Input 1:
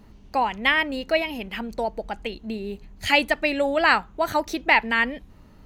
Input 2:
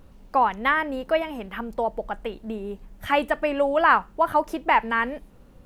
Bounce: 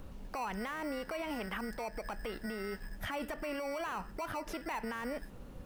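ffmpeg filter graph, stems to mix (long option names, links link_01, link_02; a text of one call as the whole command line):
ffmpeg -i stem1.wav -i stem2.wav -filter_complex "[0:a]lowpass=frequency=1200:width=0.5412,lowpass=frequency=1200:width=1.3066,acompressor=threshold=-25dB:ratio=6,aeval=exprs='val(0)*sgn(sin(2*PI*1700*n/s))':channel_layout=same,volume=-11.5dB[link_01];[1:a]alimiter=limit=-16dB:level=0:latency=1,acompressor=threshold=-26dB:ratio=6,volume=-1,volume=2dB,asplit=2[link_02][link_03];[link_03]apad=whole_len=249272[link_04];[link_01][link_04]sidechaingate=range=-33dB:threshold=-41dB:ratio=16:detection=peak[link_05];[link_05][link_02]amix=inputs=2:normalize=0,acrossover=split=600|1300|6100[link_06][link_07][link_08][link_09];[link_06]acompressor=threshold=-37dB:ratio=4[link_10];[link_07]acompressor=threshold=-39dB:ratio=4[link_11];[link_08]acompressor=threshold=-40dB:ratio=4[link_12];[link_09]acompressor=threshold=-53dB:ratio=4[link_13];[link_10][link_11][link_12][link_13]amix=inputs=4:normalize=0,alimiter=level_in=5.5dB:limit=-24dB:level=0:latency=1:release=36,volume=-5.5dB" out.wav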